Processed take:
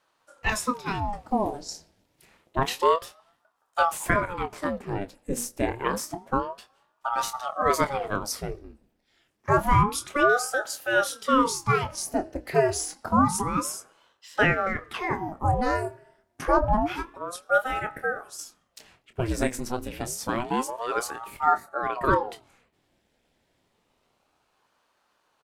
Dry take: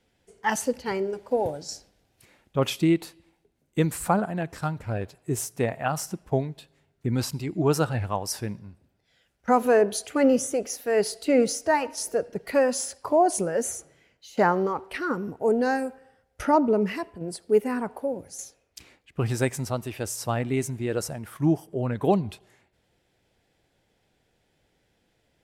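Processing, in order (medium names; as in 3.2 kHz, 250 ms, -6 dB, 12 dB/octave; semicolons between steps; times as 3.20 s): hum notches 60/120/180/240/300/360 Hz; doubling 25 ms -10 dB; ring modulator with a swept carrier 590 Hz, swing 80%, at 0.28 Hz; trim +2 dB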